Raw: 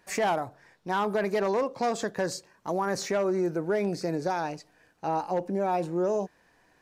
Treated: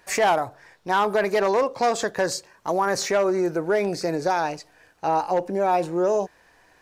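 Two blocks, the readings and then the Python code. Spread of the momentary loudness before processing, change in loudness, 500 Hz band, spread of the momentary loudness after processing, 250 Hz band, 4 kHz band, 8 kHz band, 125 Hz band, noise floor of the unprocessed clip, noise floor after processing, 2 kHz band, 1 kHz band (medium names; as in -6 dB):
9 LU, +5.5 dB, +5.5 dB, 9 LU, +2.5 dB, +7.5 dB, +7.5 dB, +0.5 dB, -64 dBFS, -58 dBFS, +7.5 dB, +7.0 dB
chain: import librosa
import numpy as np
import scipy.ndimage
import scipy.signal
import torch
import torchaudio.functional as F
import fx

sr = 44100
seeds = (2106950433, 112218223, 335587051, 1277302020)

y = fx.peak_eq(x, sr, hz=200.0, db=-7.5, octaves=1.5)
y = F.gain(torch.from_numpy(y), 7.5).numpy()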